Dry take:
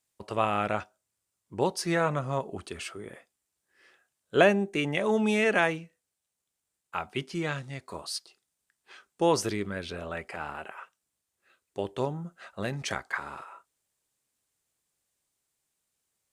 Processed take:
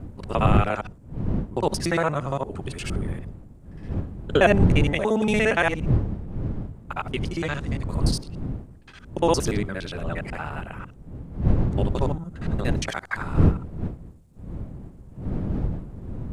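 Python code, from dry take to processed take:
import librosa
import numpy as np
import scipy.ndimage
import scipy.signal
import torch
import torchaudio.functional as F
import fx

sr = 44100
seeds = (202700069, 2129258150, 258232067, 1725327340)

y = fx.local_reverse(x, sr, ms=58.0)
y = fx.dmg_wind(y, sr, seeds[0], corner_hz=150.0, level_db=-30.0)
y = F.gain(torch.from_numpy(y), 3.5).numpy()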